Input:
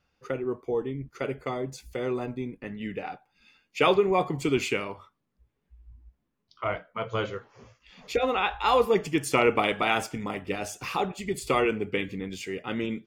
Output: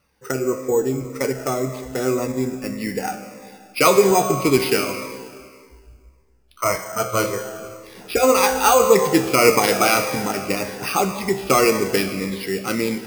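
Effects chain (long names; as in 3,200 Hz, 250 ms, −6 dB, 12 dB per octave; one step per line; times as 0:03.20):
low-pass filter 2,100 Hz 12 dB per octave
spectral tilt +2 dB per octave
tuned comb filter 65 Hz, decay 0.96 s, harmonics all, mix 70%
convolution reverb RT60 2.0 s, pre-delay 105 ms, DRR 11 dB
bad sample-rate conversion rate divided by 6×, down none, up hold
boost into a limiter +21.5 dB
phaser whose notches keep moving one way falling 1.8 Hz
level −1 dB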